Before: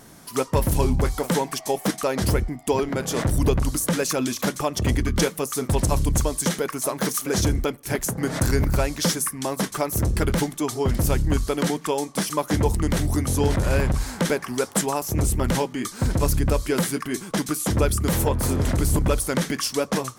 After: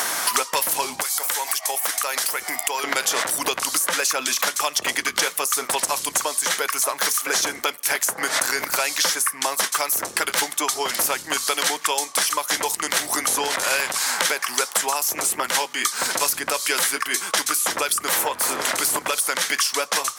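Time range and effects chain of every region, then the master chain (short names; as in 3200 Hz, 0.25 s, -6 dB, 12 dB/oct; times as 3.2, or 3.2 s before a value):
1.02–2.84 RIAA curve recording + compressor 12:1, threshold -33 dBFS
whole clip: HPF 1000 Hz 12 dB/oct; maximiser +16.5 dB; three-band squash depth 100%; gain -8 dB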